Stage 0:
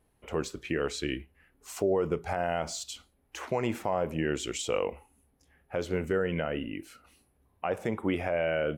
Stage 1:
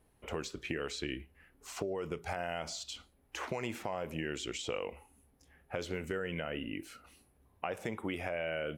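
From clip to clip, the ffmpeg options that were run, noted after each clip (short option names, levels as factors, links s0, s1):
-filter_complex "[0:a]acrossover=split=1900|6000[s0][s1][s2];[s0]acompressor=threshold=0.0141:ratio=4[s3];[s1]acompressor=threshold=0.00794:ratio=4[s4];[s2]acompressor=threshold=0.00158:ratio=4[s5];[s3][s4][s5]amix=inputs=3:normalize=0,volume=1.12"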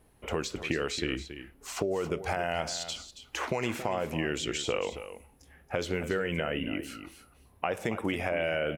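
-af "aecho=1:1:276:0.251,volume=2.11"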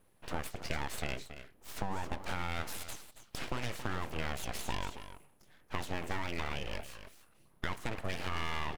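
-af "aeval=exprs='abs(val(0))':c=same,volume=0.631"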